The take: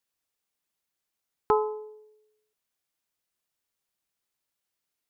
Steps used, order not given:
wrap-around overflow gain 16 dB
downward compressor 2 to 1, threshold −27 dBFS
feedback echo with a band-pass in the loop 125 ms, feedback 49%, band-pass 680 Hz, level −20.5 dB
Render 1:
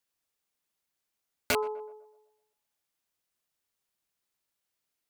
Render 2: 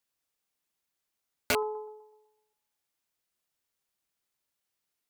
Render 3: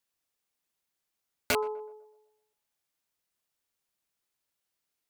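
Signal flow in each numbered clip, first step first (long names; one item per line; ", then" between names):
wrap-around overflow, then feedback echo with a band-pass in the loop, then downward compressor
feedback echo with a band-pass in the loop, then wrap-around overflow, then downward compressor
wrap-around overflow, then downward compressor, then feedback echo with a band-pass in the loop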